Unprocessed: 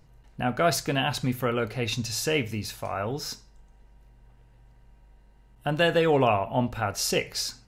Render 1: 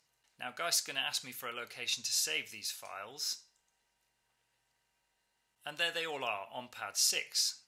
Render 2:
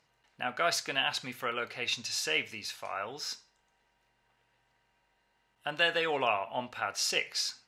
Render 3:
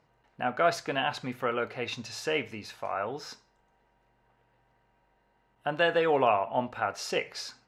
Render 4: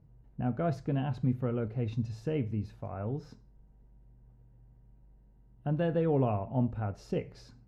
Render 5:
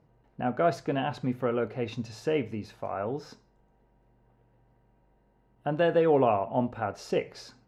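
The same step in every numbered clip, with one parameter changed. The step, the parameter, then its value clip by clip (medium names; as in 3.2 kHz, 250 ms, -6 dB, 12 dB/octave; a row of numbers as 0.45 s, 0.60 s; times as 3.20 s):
band-pass filter, frequency: 7.4 kHz, 2.8 kHz, 1.1 kHz, 120 Hz, 420 Hz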